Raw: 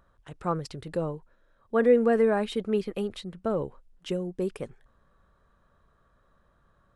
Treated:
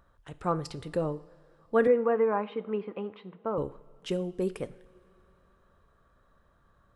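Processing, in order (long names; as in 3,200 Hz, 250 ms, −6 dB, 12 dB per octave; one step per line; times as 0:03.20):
0:01.87–0:03.58: loudspeaker in its box 240–2,300 Hz, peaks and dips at 250 Hz −5 dB, 400 Hz −5 dB, 650 Hz −6 dB, 1,000 Hz +8 dB, 1,700 Hz −9 dB
coupled-rooms reverb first 0.52 s, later 3.4 s, from −18 dB, DRR 13 dB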